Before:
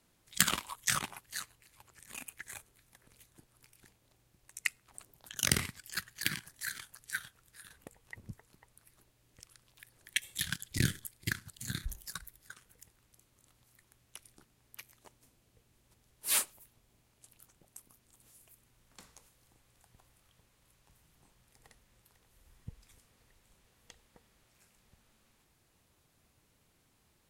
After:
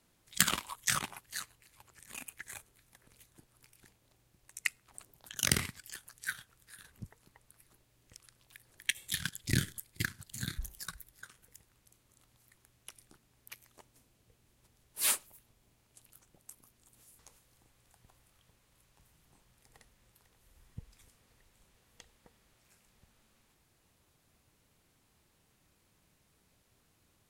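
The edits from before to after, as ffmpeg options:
-filter_complex "[0:a]asplit=4[a][b][c][d];[a]atrim=end=5.962[e];[b]atrim=start=6.818:end=7.842[f];[c]atrim=start=8.248:end=18.462[g];[d]atrim=start=19.088[h];[e][f]acrossfade=d=0.004:c1=hsin:c2=hsin[i];[i][g]acrossfade=d=0.004:c1=hsin:c2=hsin[j];[j][h]acrossfade=d=0.004:c1=hsin:c2=hsin"

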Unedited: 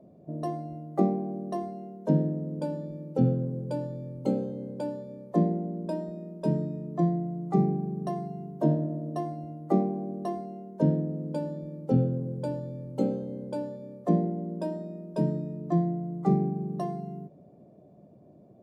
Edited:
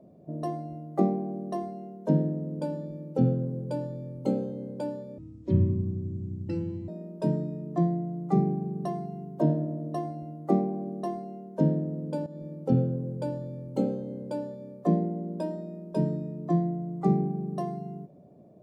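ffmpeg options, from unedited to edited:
-filter_complex "[0:a]asplit=4[a][b][c][d];[a]atrim=end=5.184[e];[b]atrim=start=5.18:end=6.1,asetpts=PTS-STARTPTS,asetrate=23814,aresample=44100,atrim=end_sample=75133,asetpts=PTS-STARTPTS[f];[c]atrim=start=6.096:end=11.48,asetpts=PTS-STARTPTS,afade=t=out:st=5.38:d=0.004:c=hsin:silence=0.237137[g];[d]atrim=start=11.48,asetpts=PTS-STARTPTS,afade=t=in:d=0.26:c=qsin:silence=0.237137[h];[e][f]acrossfade=d=0.004:c1=hsin:c2=hsin[i];[g][h]concat=n=2:v=0:a=1[j];[i][j]acrossfade=d=0.004:c1=hsin:c2=hsin"

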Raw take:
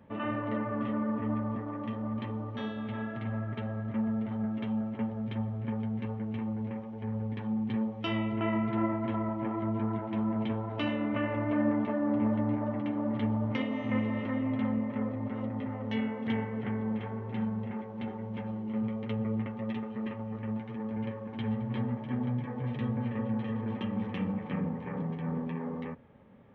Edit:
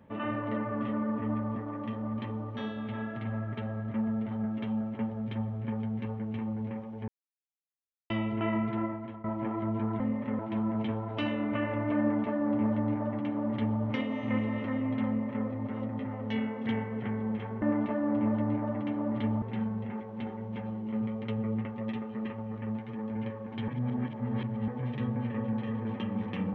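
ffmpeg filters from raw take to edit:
-filter_complex "[0:a]asplit=10[a][b][c][d][e][f][g][h][i][j];[a]atrim=end=7.08,asetpts=PTS-STARTPTS,afade=t=out:st=7.076:d=0.004:c=hsin[k];[b]atrim=start=7.08:end=8.1,asetpts=PTS-STARTPTS,volume=0[l];[c]atrim=start=8.1:end=9.24,asetpts=PTS-STARTPTS,afade=t=in:d=0.004:c=hsin,afade=t=out:st=0.52:d=0.62:silence=0.133352[m];[d]atrim=start=9.24:end=10.002,asetpts=PTS-STARTPTS,afade=t=in:d=0.004:c=hsin:silence=0.133352[n];[e]atrim=start=14.678:end=15.072[o];[f]atrim=start=9.998:end=17.232[p];[g]atrim=start=11.608:end=13.412[q];[h]atrim=start=17.228:end=21.492[r];[i]atrim=start=21.488:end=22.492,asetpts=PTS-STARTPTS,areverse[s];[j]atrim=start=22.488[t];[k][l][m][n]concat=n=4:v=0:a=1[u];[u][o]acrossfade=d=0.004:c1=hsin:c2=hsin[v];[v][p]acrossfade=d=0.004:c1=hsin:c2=hsin[w];[w][q]acrossfade=d=0.004:c1=hsin:c2=hsin[x];[x][r]acrossfade=d=0.004:c1=hsin:c2=hsin[y];[y][s]acrossfade=d=0.004:c1=hsin:c2=hsin[z];[z][t]acrossfade=d=0.004:c1=hsin:c2=hsin"

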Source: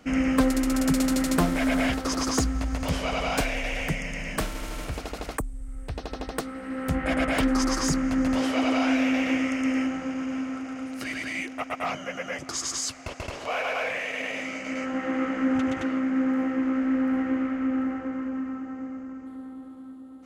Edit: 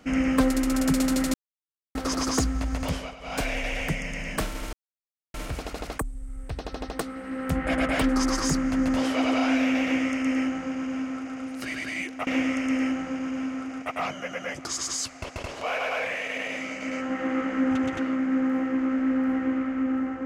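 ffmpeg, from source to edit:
-filter_complex "[0:a]asplit=8[a][b][c][d][e][f][g][h];[a]atrim=end=1.34,asetpts=PTS-STARTPTS,afade=t=out:st=1.336:d=0.004:c=hsin[i];[b]atrim=start=1.34:end=1.95,asetpts=PTS-STARTPTS,volume=0[j];[c]atrim=start=1.95:end=3.16,asetpts=PTS-STARTPTS,afade=t=in:d=0.004:c=hsin,afade=t=out:st=0.9:d=0.31:silence=0.125893[k];[d]atrim=start=3.16:end=3.19,asetpts=PTS-STARTPTS,volume=-18dB[l];[e]atrim=start=3.19:end=4.73,asetpts=PTS-STARTPTS,afade=t=in:d=0.31:silence=0.125893,afade=t=out:st=1.536:d=0.004:c=hsin,apad=pad_dur=0.61[m];[f]atrim=start=4.73:end=11.662,asetpts=PTS-STARTPTS,afade=t=in:d=0.004:c=hsin[n];[g]atrim=start=9.218:end=10.772[o];[h]atrim=start=11.658[p];[i][j][k][l][m][n]concat=n=6:v=0:a=1[q];[q][o]acrossfade=d=0.004:c1=hsin:c2=hsin[r];[r][p]acrossfade=d=0.004:c1=hsin:c2=hsin"

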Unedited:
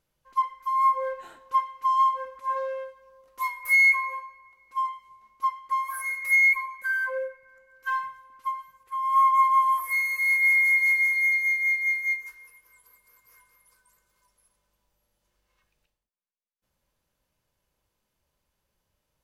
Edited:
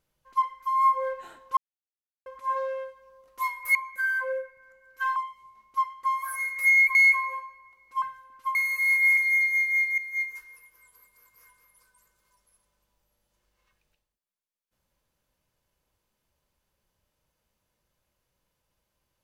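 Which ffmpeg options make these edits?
-filter_complex "[0:a]asplit=10[a][b][c][d][e][f][g][h][i][j];[a]atrim=end=1.57,asetpts=PTS-STARTPTS,afade=t=out:st=1.566:d=0.004:c=hsin[k];[b]atrim=start=1.57:end=2.26,asetpts=PTS-STARTPTS,volume=0[l];[c]atrim=start=2.26:end=3.752,asetpts=PTS-STARTPTS,afade=t=in:d=0.004:c=hsin[m];[d]atrim=start=6.608:end=8.022[n];[e]atrim=start=4.818:end=6.612[o];[f]atrim=start=3.748:end=4.822[p];[g]atrim=start=8.018:end=8.552[q];[h]atrim=start=9.948:end=10.572[r];[i]atrim=start=11.078:end=11.89,asetpts=PTS-STARTPTS,afade=t=out:st=0.808:d=0.004:c=hsin:silence=0.199526[s];[j]atrim=start=11.89,asetpts=PTS-STARTPTS,afade=t=in:d=0.31:silence=0.199526[t];[k][l][m]concat=n=3:v=0:a=1[u];[u][n]acrossfade=d=0.004:c1=hsin:c2=hsin[v];[v][o]acrossfade=d=0.004:c1=hsin:c2=hsin[w];[w][p]acrossfade=d=0.004:c1=hsin:c2=hsin[x];[x][q]acrossfade=d=0.004:c1=hsin:c2=hsin[y];[y][r]acrossfade=d=0.004:c1=hsin:c2=hsin[z];[s][t]concat=n=2:v=0:a=1[aa];[z][aa]acrossfade=d=0.004:c1=hsin:c2=hsin"

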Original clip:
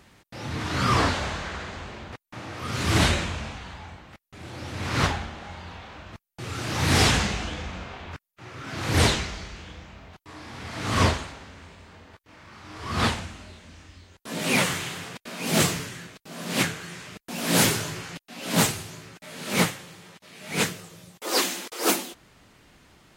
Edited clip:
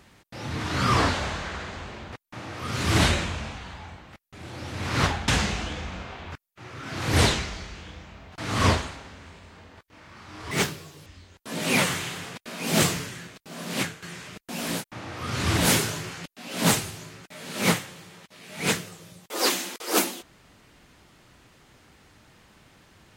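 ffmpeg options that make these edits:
-filter_complex "[0:a]asplit=8[a][b][c][d][e][f][g][h];[a]atrim=end=5.282[i];[b]atrim=start=7.088:end=10.192[j];[c]atrim=start=10.738:end=12.874[k];[d]atrim=start=12.87:end=13.86,asetpts=PTS-STARTPTS,asetrate=78939,aresample=44100[l];[e]atrim=start=13.856:end=16.82,asetpts=PTS-STARTPTS,afade=t=out:st=2.534:d=0.43:silence=0.281838[m];[f]atrim=start=16.82:end=17.64,asetpts=PTS-STARTPTS,afade=t=in:d=0.004:c=hsin:silence=0.281838[n];[g]atrim=start=2.01:end=3.13[o];[h]atrim=start=17.4[p];[i][j]acrossfade=d=0.004:c1=hsin:c2=hsin[q];[q][k]acrossfade=d=0.004:c1=hsin:c2=hsin[r];[r][l]acrossfade=d=0.004:c1=hsin:c2=hsin[s];[m][n]concat=n=2:v=0:a=1[t];[s][t]acrossfade=d=0.004:c1=hsin:c2=hsin[u];[u][o]acrossfade=d=0.24:c1=tri:c2=tri[v];[v][p]acrossfade=d=0.24:c1=tri:c2=tri"

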